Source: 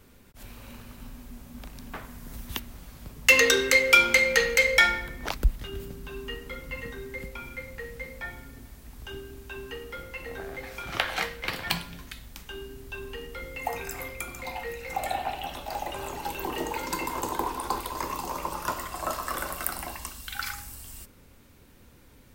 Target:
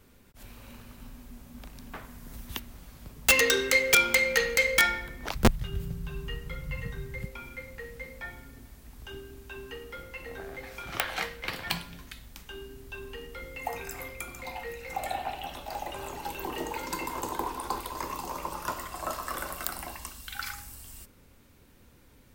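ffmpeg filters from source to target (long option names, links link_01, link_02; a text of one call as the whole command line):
ffmpeg -i in.wav -filter_complex "[0:a]asettb=1/sr,asplit=3[link_01][link_02][link_03];[link_01]atrim=end=5.354[link_04];[link_02]atrim=start=5.35:end=7.25,asetpts=PTS-STARTPTS,afade=type=in:duration=0.004:curve=qsin,afade=type=out:start_time=1.896:duration=0.004:curve=qsin,lowshelf=frequency=200:width_type=q:width=3:gain=7.5[link_05];[link_03]atrim=start=7.246[link_06];[link_04][link_05]acrossfade=duration=0.004:curve1=hsin:curve2=qsin[link_07];[link_07][link_06]acrossfade=duration=0.004:curve1=qsin:curve2=hsin,aeval=exprs='(mod(2.51*val(0)+1,2)-1)/2.51':channel_layout=same,volume=-3dB" out.wav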